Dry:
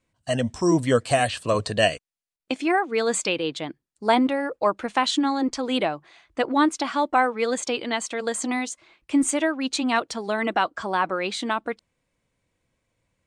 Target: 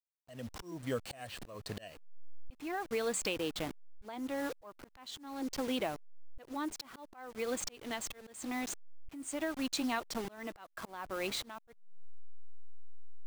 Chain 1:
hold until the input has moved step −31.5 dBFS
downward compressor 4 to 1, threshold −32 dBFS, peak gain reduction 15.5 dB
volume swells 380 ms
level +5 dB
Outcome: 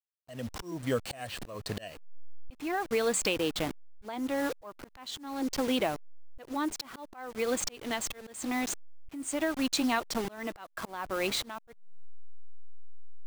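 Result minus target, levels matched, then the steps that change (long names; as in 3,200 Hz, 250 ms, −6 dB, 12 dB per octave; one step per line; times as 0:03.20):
downward compressor: peak gain reduction −6 dB
change: downward compressor 4 to 1, threshold −40 dBFS, peak gain reduction 21.5 dB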